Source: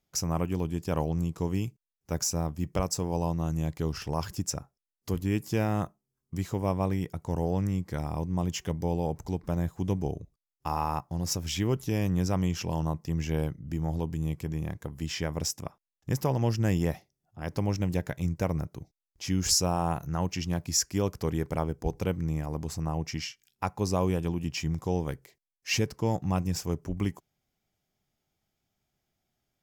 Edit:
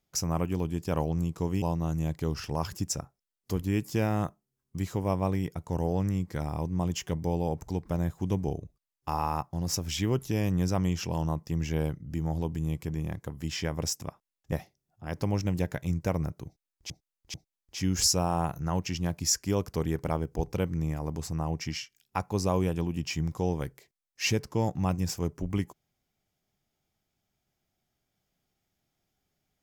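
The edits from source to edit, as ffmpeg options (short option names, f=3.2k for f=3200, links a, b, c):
-filter_complex "[0:a]asplit=5[a][b][c][d][e];[a]atrim=end=1.622[f];[b]atrim=start=3.198:end=16.102[g];[c]atrim=start=16.868:end=19.252[h];[d]atrim=start=18.808:end=19.252[i];[e]atrim=start=18.808[j];[f][g]acrossfade=d=0.004:c1=hsin:c2=hsin[k];[k][h]acrossfade=d=0.004:c1=hsin:c2=hsin[l];[l][i]acrossfade=d=0.004:c1=hsin:c2=hsin[m];[m][j]acrossfade=d=0.004:c1=hsin:c2=hsin"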